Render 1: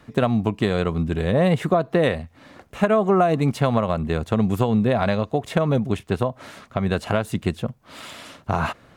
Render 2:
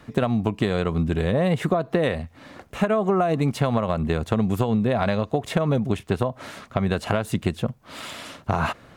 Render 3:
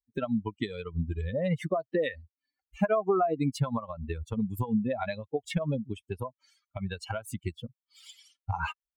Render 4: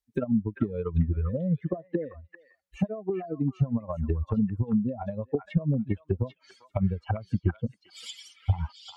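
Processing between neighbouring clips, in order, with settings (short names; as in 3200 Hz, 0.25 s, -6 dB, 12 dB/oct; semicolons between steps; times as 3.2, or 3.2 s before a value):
compressor, threshold -20 dBFS, peak gain reduction 7 dB; gain +2.5 dB
per-bin expansion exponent 3
vocal rider within 5 dB 0.5 s; treble ducked by the level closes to 310 Hz, closed at -27 dBFS; delay with a stepping band-pass 0.396 s, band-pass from 1600 Hz, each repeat 1.4 oct, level -0.5 dB; gain +5 dB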